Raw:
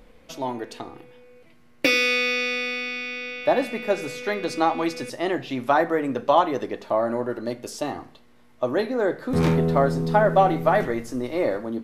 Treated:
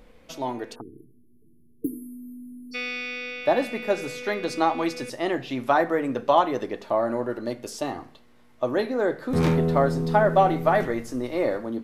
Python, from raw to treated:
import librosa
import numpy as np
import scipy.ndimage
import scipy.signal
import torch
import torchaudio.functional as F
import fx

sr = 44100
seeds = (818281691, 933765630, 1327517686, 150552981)

y = fx.cheby1_bandstop(x, sr, low_hz=1500.0, high_hz=9800.0, order=5, at=(0.74, 2.71), fade=0.02)
y = fx.spec_erase(y, sr, start_s=0.81, length_s=1.93, low_hz=470.0, high_hz=4000.0)
y = F.gain(torch.from_numpy(y), -1.0).numpy()